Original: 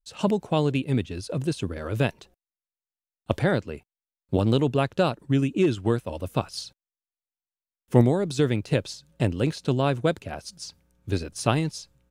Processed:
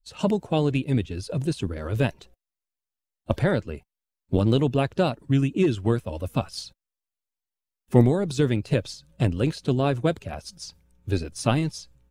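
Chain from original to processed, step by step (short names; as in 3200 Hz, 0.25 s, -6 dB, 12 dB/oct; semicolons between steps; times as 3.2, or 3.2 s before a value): bin magnitudes rounded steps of 15 dB; low shelf 60 Hz +12 dB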